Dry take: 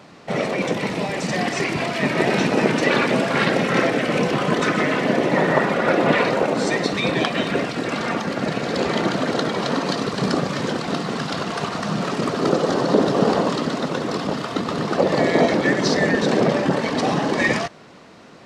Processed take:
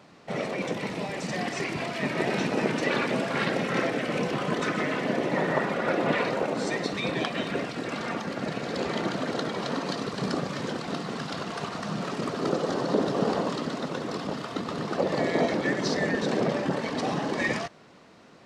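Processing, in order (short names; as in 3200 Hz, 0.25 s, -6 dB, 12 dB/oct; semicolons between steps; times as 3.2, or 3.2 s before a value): gain -8 dB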